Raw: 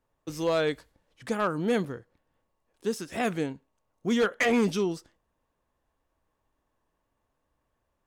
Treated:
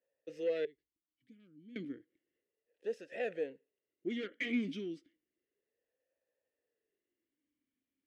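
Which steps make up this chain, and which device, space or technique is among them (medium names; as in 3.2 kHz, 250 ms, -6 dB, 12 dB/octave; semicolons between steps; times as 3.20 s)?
0.65–1.76 s: amplifier tone stack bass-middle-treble 10-0-1; talk box (valve stage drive 22 dB, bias 0.4; talking filter e-i 0.32 Hz); trim +3.5 dB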